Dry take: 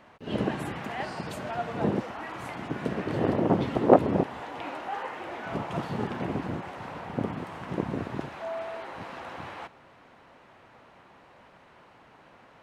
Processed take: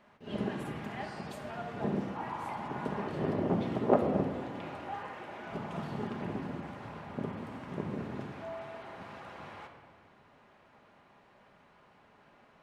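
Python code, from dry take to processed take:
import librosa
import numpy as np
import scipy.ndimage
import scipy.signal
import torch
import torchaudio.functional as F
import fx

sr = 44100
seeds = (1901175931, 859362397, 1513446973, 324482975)

y = fx.peak_eq(x, sr, hz=910.0, db=12.5, octaves=0.59, at=(2.16, 3.08))
y = fx.room_shoebox(y, sr, seeds[0], volume_m3=2200.0, walls='mixed', distance_m=1.3)
y = y * 10.0 ** (-8.5 / 20.0)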